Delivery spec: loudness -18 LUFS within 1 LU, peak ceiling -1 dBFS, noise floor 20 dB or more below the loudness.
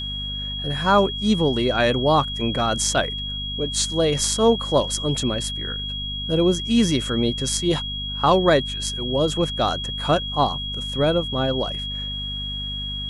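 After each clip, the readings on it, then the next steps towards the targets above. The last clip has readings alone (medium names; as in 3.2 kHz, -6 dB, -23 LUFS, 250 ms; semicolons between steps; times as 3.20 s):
hum 50 Hz; highest harmonic 250 Hz; hum level -30 dBFS; steady tone 3.3 kHz; tone level -28 dBFS; loudness -21.5 LUFS; peak level -4.5 dBFS; loudness target -18.0 LUFS
-> hum notches 50/100/150/200/250 Hz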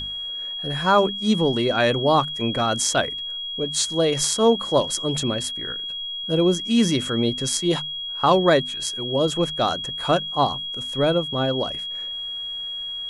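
hum not found; steady tone 3.3 kHz; tone level -28 dBFS
-> band-stop 3.3 kHz, Q 30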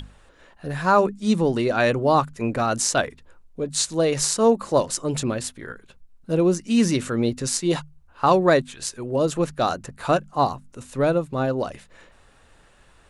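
steady tone not found; loudness -22.5 LUFS; peak level -4.5 dBFS; loudness target -18.0 LUFS
-> trim +4.5 dB; peak limiter -1 dBFS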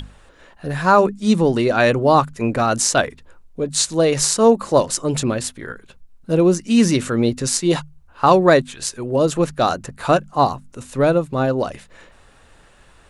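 loudness -18.0 LUFS; peak level -1.0 dBFS; noise floor -50 dBFS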